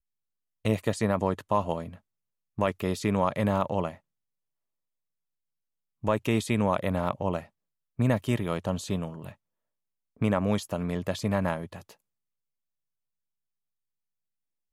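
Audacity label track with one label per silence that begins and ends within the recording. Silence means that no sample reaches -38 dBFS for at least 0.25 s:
1.940000	2.580000	silence
3.930000	6.040000	silence
7.430000	7.990000	silence
9.310000	10.210000	silence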